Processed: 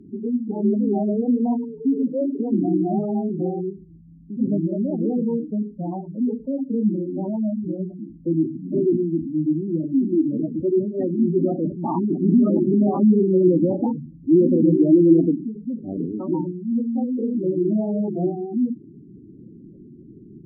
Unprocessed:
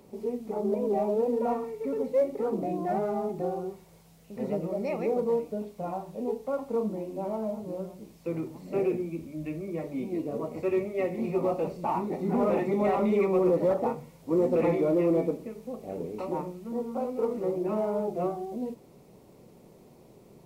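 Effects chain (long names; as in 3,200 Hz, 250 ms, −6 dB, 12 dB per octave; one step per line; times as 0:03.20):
low shelf with overshoot 380 Hz +6.5 dB, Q 3
gate on every frequency bin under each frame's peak −15 dB strong
treble cut that deepens with the level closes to 1,600 Hz, closed at −21 dBFS
level +3.5 dB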